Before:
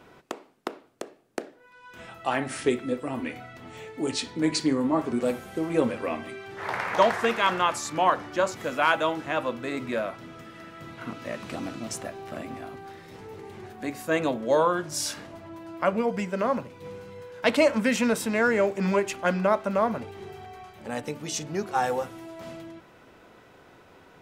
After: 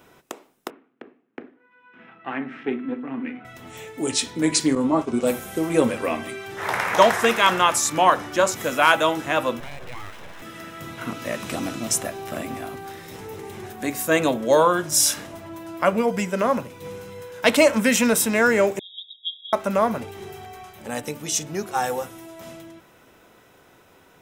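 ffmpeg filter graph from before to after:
-filter_complex "[0:a]asettb=1/sr,asplit=3[a][b][c];[a]atrim=end=0.704[d];[b]atrim=start=0.7:end=3.45,asetpts=PTS-STARTPTS,afade=t=in:d=0.004:c=qsin,afade=t=out:st=2.746:d=0.004:c=qsin,aeval=exprs='if(lt(val(0),0),0.447*val(0),val(0))':c=same,highpass=f=150:w=0.5412,highpass=f=150:w=1.3066,equalizer=f=250:t=q:w=4:g=9,equalizer=f=600:t=q:w=4:g=-8,equalizer=f=910:t=q:w=4:g=-3,lowpass=f=2.5k:w=0.5412,lowpass=f=2.5k:w=1.3066,bandreject=f=50:t=h:w=6,bandreject=f=100:t=h:w=6,bandreject=f=150:t=h:w=6,bandreject=f=200:t=h:w=6,bandreject=f=250:t=h:w=6,bandreject=f=300:t=h:w=6,bandreject=f=350:t=h:w=6,bandreject=f=400:t=h:w=6,bandreject=f=450:t=h:w=6[e];[c]atrim=start=3.446[f];[d][e]acrossfade=d=0.004:c1=hsin:c2=qsin[g];[g][f]acrossfade=d=0.004:c1=qsin:c2=hsin,asettb=1/sr,asplit=3[h][i][j];[h]atrim=end=4.754[k];[i]atrim=start=4.75:end=5.27,asetpts=PTS-STARTPTS,afade=t=in:d=0.004:c=qsin,afade=t=out:st=0.516:d=0.004:c=qsin,lowpass=7.5k,agate=range=-33dB:threshold=-29dB:ratio=3:release=100:detection=peak,equalizer=f=1.8k:t=o:w=0.27:g=-9.5[l];[j]atrim=start=5.266[m];[k][l]acrossfade=d=0.004:c1=hsin:c2=qsin[n];[n][m]acrossfade=d=0.004:c1=qsin:c2=hsin,asettb=1/sr,asplit=3[o][p][q];[o]atrim=end=9.604[r];[p]atrim=start=9.6:end=10.42,asetpts=PTS-STARTPTS,afade=t=in:d=0.004:c=qsin,afade=t=out:st=0.816:d=0.004:c=qsin,bass=f=250:g=-1,treble=f=4k:g=-13,acompressor=threshold=-37dB:ratio=4:attack=3.2:release=140:knee=1:detection=peak,aeval=exprs='abs(val(0))':c=same[s];[q]atrim=start=10.416[t];[r][s]acrossfade=d=0.004:c1=hsin:c2=qsin[u];[u][t]acrossfade=d=0.004:c1=qsin:c2=hsin,asettb=1/sr,asplit=3[v][w][x];[v]atrim=end=18.794[y];[w]atrim=start=18.79:end=19.53,asetpts=PTS-STARTPTS,afade=t=in:d=0.004:c=qsin,afade=t=out:st=0.736:d=0.004:c=qsin,aeval=exprs='val(0)*sin(2*PI*1800*n/s)':c=same,asuperpass=centerf=3500:order=20:qfactor=5.8[z];[x]atrim=start=19.526[aa];[y][z]acrossfade=d=0.004:c1=hsin:c2=qsin[ab];[ab][aa]acrossfade=d=0.004:c1=qsin:c2=hsin,dynaudnorm=f=600:g=13:m=11.5dB,aemphasis=mode=production:type=50kf,bandreject=f=4.5k:w=10,volume=-1.5dB"

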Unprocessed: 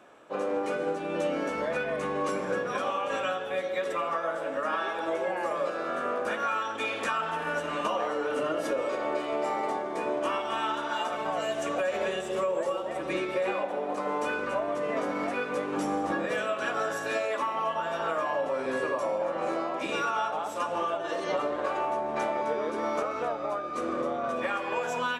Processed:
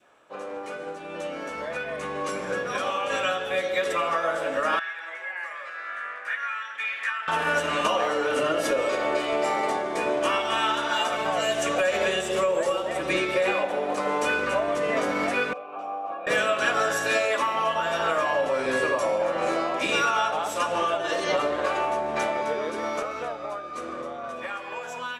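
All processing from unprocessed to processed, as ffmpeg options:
-filter_complex "[0:a]asettb=1/sr,asplit=3[a][b][c];[a]atrim=end=4.794[d];[b]atrim=start=4.79:end=7.28,asetpts=PTS-STARTPTS,afade=t=in:d=0.004:c=qsin,afade=t=out:st=2.486:d=0.004:c=qsin,bandpass=f=1.9k:t=q:w=4.8,aemphasis=mode=production:type=50fm[e];[c]atrim=start=7.276[f];[d][e]acrossfade=d=0.004:c1=hsin:c2=qsin[g];[g][f]acrossfade=d=0.004:c1=qsin:c2=hsin,asettb=1/sr,asplit=3[h][i][j];[h]atrim=end=15.534[k];[i]atrim=start=15.53:end=16.27,asetpts=PTS-STARTPTS,afade=t=in:d=0.004:c=qsin,afade=t=out:st=0.736:d=0.004:c=qsin,asplit=3[l][m][n];[l]bandpass=f=730:t=q:w=8,volume=0dB[o];[m]bandpass=f=1.09k:t=q:w=8,volume=-6dB[p];[n]bandpass=f=2.44k:t=q:w=8,volume=-9dB[q];[o][p][q]amix=inputs=3:normalize=0,highshelf=f=3.2k:g=-8[r];[j]atrim=start=16.266[s];[k][r]acrossfade=d=0.004:c1=hsin:c2=qsin[t];[t][s]acrossfade=d=0.004:c1=qsin:c2=hsin,equalizer=f=270:t=o:w=2.5:g=-7,dynaudnorm=f=170:g=31:m=12dB,adynamicequalizer=threshold=0.02:dfrequency=1000:dqfactor=1.2:tfrequency=1000:tqfactor=1.2:attack=5:release=100:ratio=0.375:range=2.5:mode=cutabove:tftype=bell,volume=-1.5dB"

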